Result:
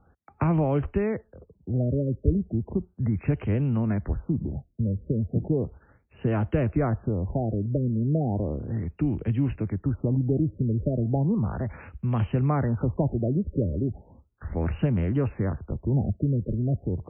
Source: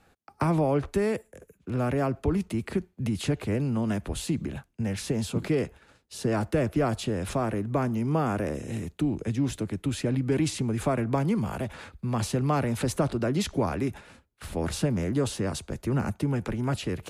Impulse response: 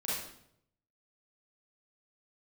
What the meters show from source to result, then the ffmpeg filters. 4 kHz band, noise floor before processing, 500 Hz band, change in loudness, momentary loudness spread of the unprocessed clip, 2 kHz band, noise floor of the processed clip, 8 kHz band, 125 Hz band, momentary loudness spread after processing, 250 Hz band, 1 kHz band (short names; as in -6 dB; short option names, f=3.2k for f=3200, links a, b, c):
under -15 dB, -67 dBFS, -1.0 dB, +1.5 dB, 7 LU, -6.0 dB, -63 dBFS, under -40 dB, +4.5 dB, 6 LU, +1.0 dB, -4.0 dB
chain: -af "equalizer=f=65:w=0.49:g=10,afftfilt=real='re*lt(b*sr/1024,600*pow(3300/600,0.5+0.5*sin(2*PI*0.35*pts/sr)))':imag='im*lt(b*sr/1024,600*pow(3300/600,0.5+0.5*sin(2*PI*0.35*pts/sr)))':win_size=1024:overlap=0.75,volume=-2dB"